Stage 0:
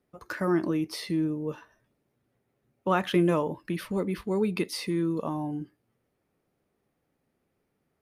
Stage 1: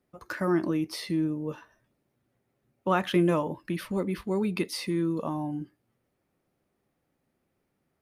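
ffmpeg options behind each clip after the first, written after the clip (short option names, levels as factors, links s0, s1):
-af "bandreject=f=440:w=12"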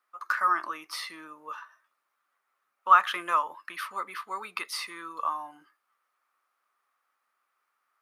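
-af "highpass=f=1200:t=q:w=5.1"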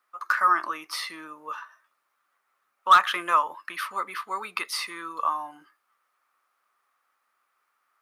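-af "volume=4.47,asoftclip=hard,volume=0.224,volume=1.58"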